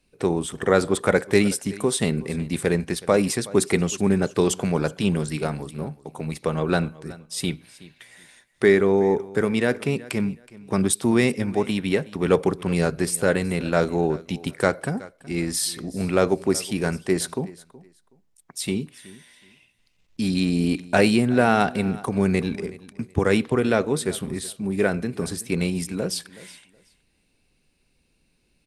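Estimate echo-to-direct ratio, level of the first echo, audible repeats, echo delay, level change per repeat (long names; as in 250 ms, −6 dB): −20.0 dB, −20.0 dB, 2, 372 ms, −13.0 dB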